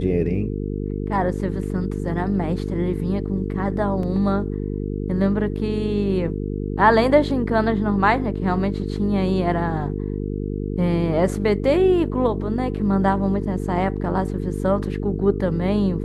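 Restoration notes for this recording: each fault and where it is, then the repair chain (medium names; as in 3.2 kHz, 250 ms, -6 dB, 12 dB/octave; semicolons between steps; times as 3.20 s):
buzz 50 Hz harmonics 9 -26 dBFS
4.03 s: dropout 2.7 ms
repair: de-hum 50 Hz, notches 9; interpolate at 4.03 s, 2.7 ms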